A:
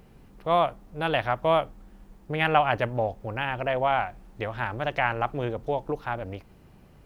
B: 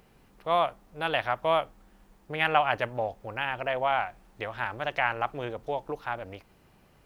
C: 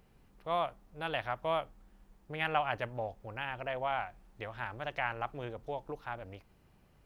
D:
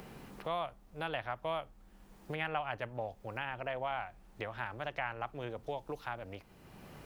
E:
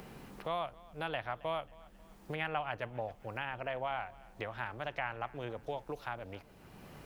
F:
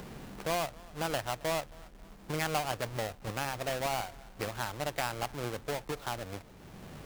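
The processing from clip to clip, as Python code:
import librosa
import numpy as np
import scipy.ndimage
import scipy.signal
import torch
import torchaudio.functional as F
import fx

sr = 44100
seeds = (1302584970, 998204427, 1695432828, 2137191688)

y1 = fx.low_shelf(x, sr, hz=440.0, db=-9.5)
y2 = fx.low_shelf(y1, sr, hz=160.0, db=7.5)
y2 = y2 * librosa.db_to_amplitude(-8.0)
y3 = fx.band_squash(y2, sr, depth_pct=70)
y3 = y3 * librosa.db_to_amplitude(-2.5)
y4 = fx.echo_feedback(y3, sr, ms=270, feedback_pct=48, wet_db=-22.0)
y5 = fx.halfwave_hold(y4, sr)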